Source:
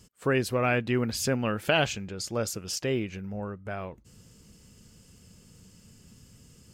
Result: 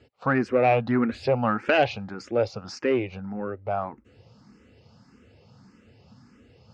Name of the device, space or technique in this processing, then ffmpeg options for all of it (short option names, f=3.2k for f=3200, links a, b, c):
barber-pole phaser into a guitar amplifier: -filter_complex "[0:a]asplit=2[a][b];[b]afreqshift=1.7[c];[a][c]amix=inputs=2:normalize=1,asoftclip=type=tanh:threshold=-20dB,highpass=98,equalizer=f=170:t=q:w=4:g=-8,equalizer=f=250:t=q:w=4:g=3,equalizer=f=530:t=q:w=4:g=3,equalizer=f=790:t=q:w=4:g=9,equalizer=f=1.3k:t=q:w=4:g=4,equalizer=f=3.2k:t=q:w=4:g=-9,lowpass=f=4.1k:w=0.5412,lowpass=f=4.1k:w=1.3066,volume=6.5dB"